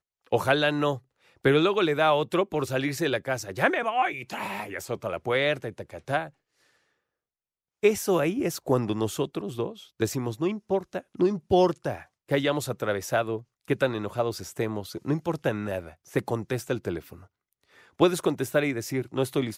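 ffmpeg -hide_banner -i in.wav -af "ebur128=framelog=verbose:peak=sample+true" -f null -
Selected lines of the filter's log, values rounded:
Integrated loudness:
  I:         -27.2 LUFS
  Threshold: -37.6 LUFS
Loudness range:
  LRA:         5.7 LU
  Threshold: -48.1 LUFS
  LRA low:   -30.8 LUFS
  LRA high:  -25.1 LUFS
Sample peak:
  Peak:       -8.4 dBFS
True peak:
  Peak:       -8.4 dBFS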